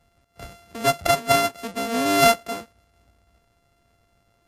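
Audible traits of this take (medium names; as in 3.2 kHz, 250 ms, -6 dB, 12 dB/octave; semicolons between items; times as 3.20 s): a buzz of ramps at a fixed pitch in blocks of 64 samples; MP3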